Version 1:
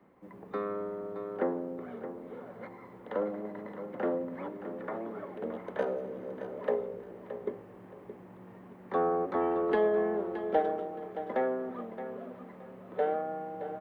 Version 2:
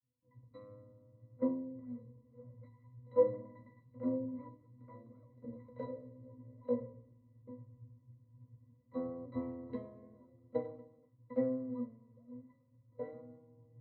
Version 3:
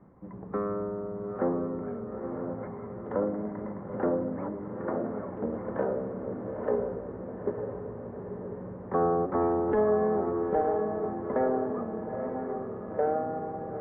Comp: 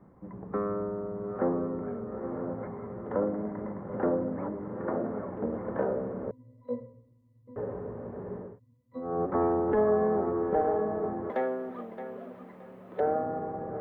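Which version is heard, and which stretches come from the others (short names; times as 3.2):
3
6.31–7.56 from 2
8.48–9.13 from 2, crossfade 0.24 s
11.3–13 from 1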